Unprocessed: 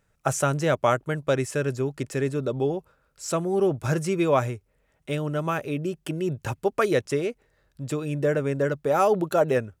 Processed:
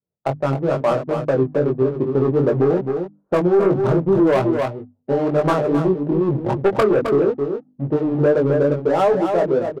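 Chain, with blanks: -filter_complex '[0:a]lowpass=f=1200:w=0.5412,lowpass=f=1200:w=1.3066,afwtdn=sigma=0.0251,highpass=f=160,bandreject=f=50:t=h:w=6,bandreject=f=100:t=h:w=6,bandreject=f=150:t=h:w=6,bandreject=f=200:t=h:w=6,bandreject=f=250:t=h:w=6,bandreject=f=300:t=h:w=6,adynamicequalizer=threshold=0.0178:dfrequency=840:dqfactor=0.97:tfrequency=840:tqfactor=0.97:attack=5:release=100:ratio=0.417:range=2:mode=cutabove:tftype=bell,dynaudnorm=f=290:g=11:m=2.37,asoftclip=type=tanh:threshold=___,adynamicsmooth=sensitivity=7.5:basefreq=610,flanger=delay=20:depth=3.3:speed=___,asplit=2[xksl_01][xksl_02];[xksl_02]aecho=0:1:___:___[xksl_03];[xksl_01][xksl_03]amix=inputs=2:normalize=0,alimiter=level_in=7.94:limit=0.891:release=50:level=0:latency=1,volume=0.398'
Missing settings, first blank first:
0.178, 2.4, 263, 0.398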